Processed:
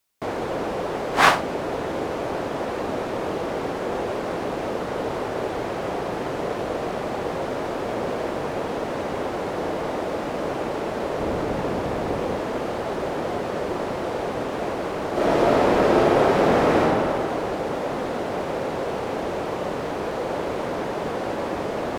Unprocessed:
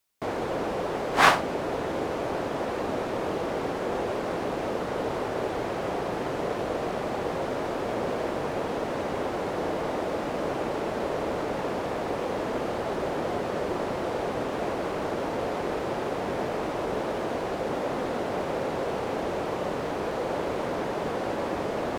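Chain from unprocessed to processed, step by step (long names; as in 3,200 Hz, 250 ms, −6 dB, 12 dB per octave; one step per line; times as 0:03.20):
0:11.20–0:12.36: low-shelf EQ 230 Hz +8 dB
0:15.11–0:16.80: thrown reverb, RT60 2.6 s, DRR −8.5 dB
level +2.5 dB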